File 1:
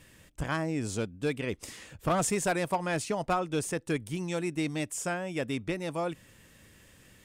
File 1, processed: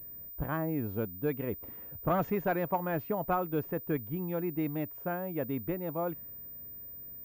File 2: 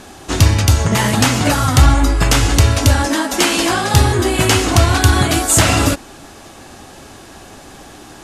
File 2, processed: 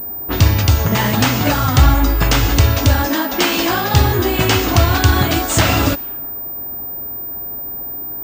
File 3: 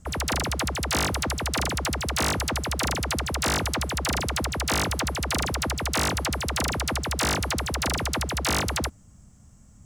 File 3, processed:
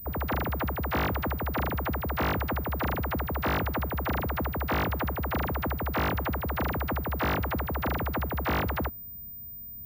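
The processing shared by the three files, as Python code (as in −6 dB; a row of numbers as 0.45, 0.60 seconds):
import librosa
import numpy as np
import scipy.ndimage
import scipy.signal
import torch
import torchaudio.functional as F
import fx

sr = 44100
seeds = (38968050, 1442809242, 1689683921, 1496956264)

y = fx.env_lowpass(x, sr, base_hz=790.0, full_db=-11.5)
y = fx.pwm(y, sr, carrier_hz=15000.0)
y = y * librosa.db_to_amplitude(-1.0)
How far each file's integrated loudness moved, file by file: −2.0, −2.0, −4.0 LU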